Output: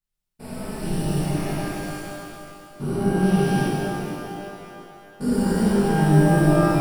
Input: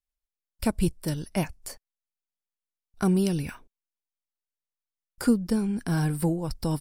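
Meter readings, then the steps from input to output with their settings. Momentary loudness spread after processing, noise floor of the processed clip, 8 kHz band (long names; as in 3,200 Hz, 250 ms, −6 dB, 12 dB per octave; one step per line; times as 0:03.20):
20 LU, −80 dBFS, +3.5 dB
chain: spectrum averaged block by block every 400 ms
amplitude modulation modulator 160 Hz, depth 30%
reverb with rising layers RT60 2.7 s, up +12 semitones, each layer −8 dB, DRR −11 dB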